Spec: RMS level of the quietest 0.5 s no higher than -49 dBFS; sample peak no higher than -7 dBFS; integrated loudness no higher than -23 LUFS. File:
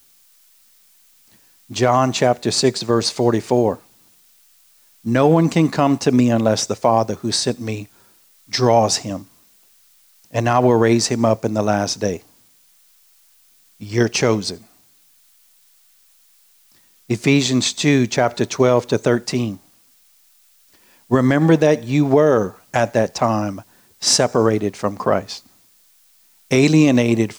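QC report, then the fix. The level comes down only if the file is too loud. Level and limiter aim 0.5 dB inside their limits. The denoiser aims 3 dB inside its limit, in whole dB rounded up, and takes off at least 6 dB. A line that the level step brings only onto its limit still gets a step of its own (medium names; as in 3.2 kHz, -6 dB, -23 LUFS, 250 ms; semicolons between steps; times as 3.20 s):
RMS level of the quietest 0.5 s -55 dBFS: pass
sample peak -3.5 dBFS: fail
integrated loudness -17.5 LUFS: fail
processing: trim -6 dB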